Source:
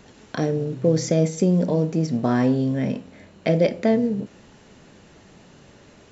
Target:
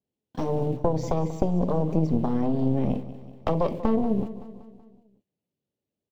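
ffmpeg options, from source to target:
ffmpeg -i in.wav -filter_complex "[0:a]aeval=exprs='val(0)+0.5*0.0188*sgn(val(0))':channel_layout=same,highpass=75,agate=range=-48dB:threshold=-28dB:ratio=16:detection=peak,firequalizer=gain_entry='entry(480,0);entry(1300,-17);entry(2900,-6);entry(5700,-11)':delay=0.05:min_phase=1,acompressor=threshold=-20dB:ratio=6,aeval=exprs='0.631*(cos(1*acos(clip(val(0)/0.631,-1,1)))-cos(1*PI/2))+0.316*(cos(4*acos(clip(val(0)/0.631,-1,1)))-cos(4*PI/2))':channel_layout=same,asplit=2[link_01][link_02];[link_02]aecho=0:1:189|378|567|756|945:0.178|0.0978|0.0538|0.0296|0.0163[link_03];[link_01][link_03]amix=inputs=2:normalize=0,adynamicequalizer=threshold=0.00316:dfrequency=3400:dqfactor=0.7:tfrequency=3400:tqfactor=0.7:attack=5:release=100:ratio=0.375:range=3:mode=cutabove:tftype=highshelf" out.wav

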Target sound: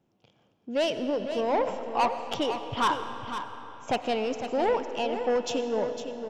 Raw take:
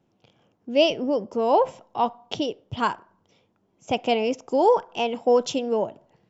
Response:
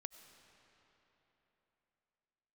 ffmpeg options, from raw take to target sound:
-filter_complex "[0:a]asettb=1/sr,asplit=3[link_01][link_02][link_03];[link_01]atrim=end=1.674[link_04];[link_02]atrim=start=1.67:end=4.01,asetpts=PTS-STARTPTS,afade=type=in:duration=0.004:curve=qsin,afade=type=out:start_time=2.336:duration=0.004:curve=qsin,equalizer=frequency=1300:width_type=o:width=2.1:gain=12.5[link_05];[link_03]atrim=start=4.006[link_06];[link_04][link_05]acrossfade=duration=0.004:curve1=hsin:curve2=qsin[link_07];[link_07][link_06]acrossfade=duration=0.004:curve1=qsin:curve2=hsin,asoftclip=type=tanh:threshold=-16.5dB,aecho=1:1:505:0.335[link_08];[1:a]atrim=start_sample=2205[link_09];[link_08][link_09]afir=irnorm=-1:irlink=0,volume=1.5dB"

